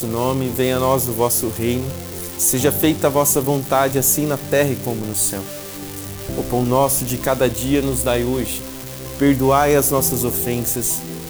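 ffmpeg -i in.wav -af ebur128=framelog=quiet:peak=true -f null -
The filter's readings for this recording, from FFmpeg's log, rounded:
Integrated loudness:
  I:         -18.0 LUFS
  Threshold: -28.4 LUFS
Loudness range:
  LRA:         2.6 LU
  Threshold: -38.4 LUFS
  LRA low:   -19.9 LUFS
  LRA high:  -17.3 LUFS
True peak:
  Peak:       -3.1 dBFS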